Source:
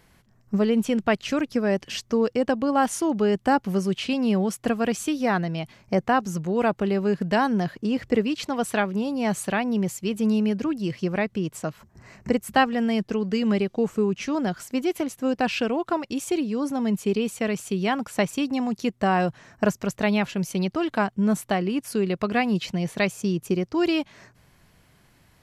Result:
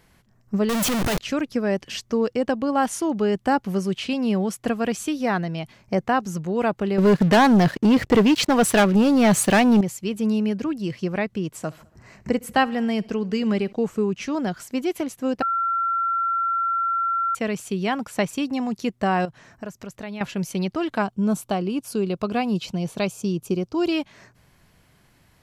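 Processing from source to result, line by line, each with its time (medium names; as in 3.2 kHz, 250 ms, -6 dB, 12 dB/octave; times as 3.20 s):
0.69–1.18 s: one-bit comparator
6.98–9.81 s: waveshaping leveller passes 3
11.47–13.73 s: feedback delay 69 ms, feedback 60%, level -23.5 dB
15.42–17.35 s: bleep 1.36 kHz -20 dBFS
19.25–20.21 s: compression 2:1, threshold -39 dBFS
21.02–23.92 s: peaking EQ 1.9 kHz -12.5 dB 0.42 oct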